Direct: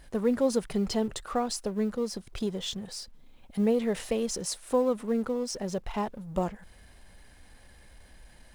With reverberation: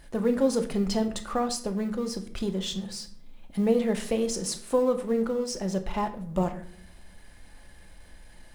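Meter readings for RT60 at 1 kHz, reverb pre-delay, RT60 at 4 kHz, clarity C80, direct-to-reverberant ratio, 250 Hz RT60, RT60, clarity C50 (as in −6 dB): 0.50 s, 3 ms, 0.40 s, 16.0 dB, 6.0 dB, 0.95 s, 0.60 s, 12.5 dB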